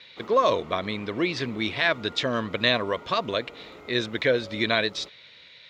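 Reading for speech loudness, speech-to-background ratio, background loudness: -25.5 LUFS, 19.5 dB, -45.0 LUFS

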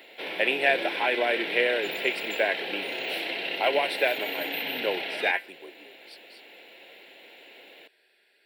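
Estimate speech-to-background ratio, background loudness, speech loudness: 3.5 dB, -31.0 LUFS, -27.5 LUFS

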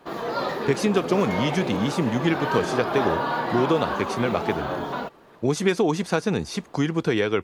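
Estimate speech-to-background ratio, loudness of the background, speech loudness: 3.0 dB, -28.0 LUFS, -25.0 LUFS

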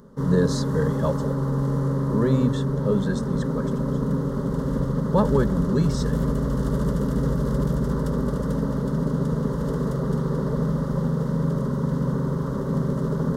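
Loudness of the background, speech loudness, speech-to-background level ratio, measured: -25.0 LUFS, -25.5 LUFS, -0.5 dB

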